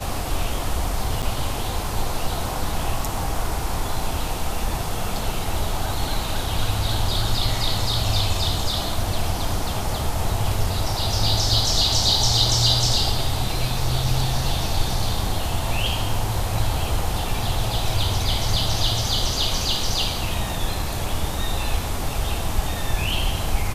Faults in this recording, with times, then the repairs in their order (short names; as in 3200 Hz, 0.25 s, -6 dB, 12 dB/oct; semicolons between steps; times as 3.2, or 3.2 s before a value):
1.22–1.23 gap 6.9 ms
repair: interpolate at 1.22, 6.9 ms